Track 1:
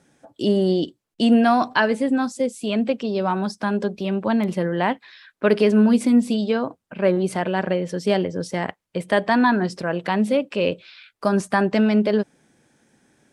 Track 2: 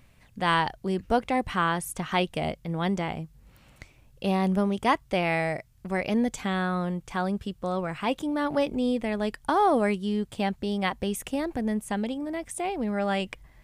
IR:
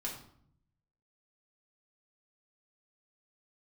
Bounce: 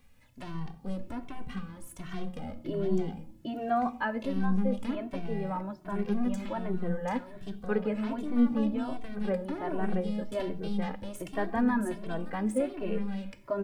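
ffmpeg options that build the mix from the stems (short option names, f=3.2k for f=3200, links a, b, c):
-filter_complex "[0:a]lowpass=1.7k,flanger=delay=2.1:depth=7.6:regen=76:speed=0.23:shape=triangular,adelay=2250,volume=-5dB,asplit=2[a][b];[b]volume=-15dB[c];[1:a]bandreject=f=106.8:t=h:w=4,bandreject=f=213.6:t=h:w=4,bandreject=f=320.4:t=h:w=4,bandreject=f=427.2:t=h:w=4,bandreject=f=534:t=h:w=4,acrossover=split=400[d][e];[e]acompressor=threshold=-39dB:ratio=5[f];[d][f]amix=inputs=2:normalize=0,aeval=exprs='(tanh(31.6*val(0)+0.8)-tanh(0.8))/31.6':c=same,volume=-1dB,asplit=2[g][h];[h]volume=-4dB[i];[2:a]atrim=start_sample=2205[j];[c][i]amix=inputs=2:normalize=0[k];[k][j]afir=irnorm=-1:irlink=0[l];[a][g][l]amix=inputs=3:normalize=0,acrusher=bits=11:mix=0:aa=0.000001,asplit=2[m][n];[n]adelay=2.1,afreqshift=1.3[o];[m][o]amix=inputs=2:normalize=1"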